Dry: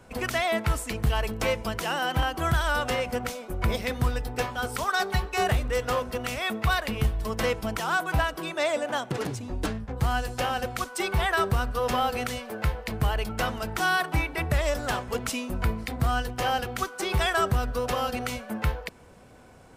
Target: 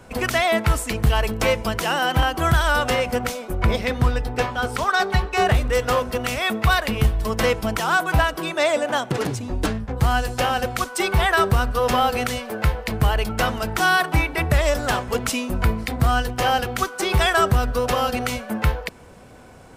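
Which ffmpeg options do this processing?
-filter_complex "[0:a]asettb=1/sr,asplit=3[s0][s1][s2];[s0]atrim=end=3.554[s3];[s1]atrim=start=3.55:end=5.55,asetpts=PTS-STARTPTS,afade=t=in:d=0.004:c=qsin,afade=t=out:st=1.996:d=0.004:c=qsin,highshelf=f=7800:g=-11[s4];[s2]atrim=start=5.546[s5];[s3][s4]acrossfade=d=0.004:c1=hsin:c2=qsin[s6];[s6][s5]acrossfade=d=0.004:c1=qsin:c2=hsin,volume=2.11"

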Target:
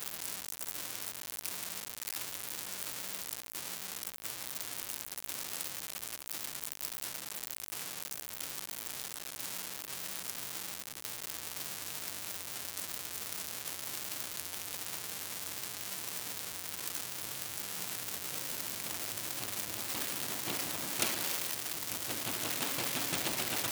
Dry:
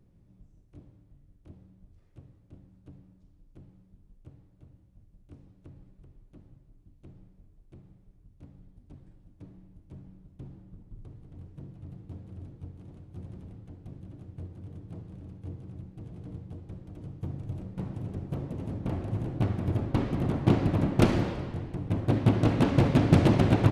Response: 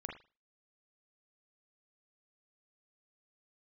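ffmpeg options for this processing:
-af "aeval=exprs='val(0)+0.5*0.0531*sgn(val(0))':c=same,aderivative,volume=2"

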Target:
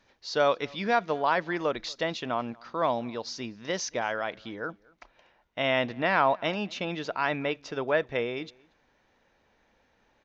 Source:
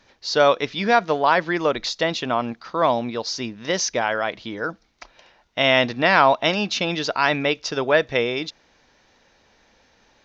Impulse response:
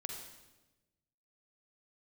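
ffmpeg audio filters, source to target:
-filter_complex "[0:a]asetnsamples=n=441:p=0,asendcmd='4.56 equalizer g -10',equalizer=f=5200:t=o:w=1.2:g=-3,asplit=2[s0][s1];[s1]adelay=233.2,volume=0.0501,highshelf=f=4000:g=-5.25[s2];[s0][s2]amix=inputs=2:normalize=0,volume=0.422"

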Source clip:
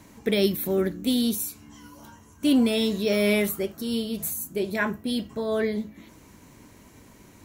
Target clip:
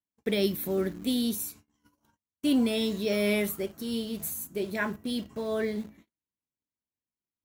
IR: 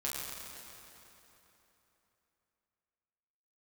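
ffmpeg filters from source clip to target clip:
-filter_complex "[0:a]agate=range=0.00631:threshold=0.00708:ratio=16:detection=peak,asplit=2[s0][s1];[s1]acrusher=bits=5:mix=0:aa=0.000001,volume=0.282[s2];[s0][s2]amix=inputs=2:normalize=0,volume=0.473"

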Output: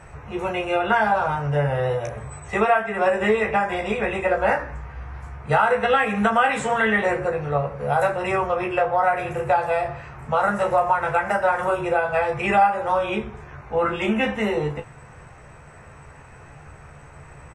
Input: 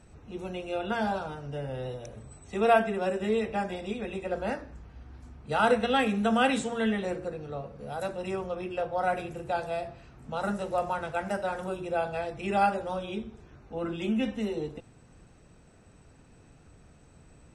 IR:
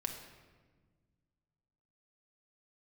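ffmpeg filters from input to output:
-af "equalizer=f=125:t=o:w=1:g=6,equalizer=f=250:t=o:w=1:g=-9,equalizer=f=500:t=o:w=1:g=3,equalizer=f=1000:t=o:w=1:g=9,equalizer=f=2000:t=o:w=1:g=10,equalizer=f=4000:t=o:w=1:g=-7,acompressor=threshold=0.0562:ratio=6,aecho=1:1:14|34:0.562|0.355,volume=2.37"

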